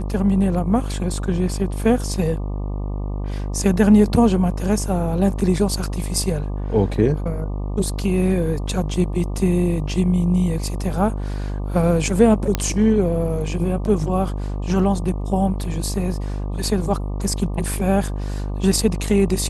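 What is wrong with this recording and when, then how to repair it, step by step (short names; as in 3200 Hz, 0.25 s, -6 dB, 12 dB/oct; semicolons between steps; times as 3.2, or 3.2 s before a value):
buzz 50 Hz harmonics 24 -25 dBFS
12.55 pop -5 dBFS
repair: de-click; de-hum 50 Hz, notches 24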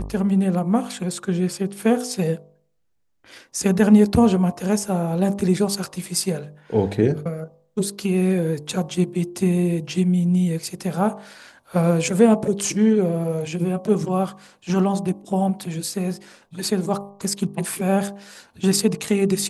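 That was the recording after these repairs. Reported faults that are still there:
none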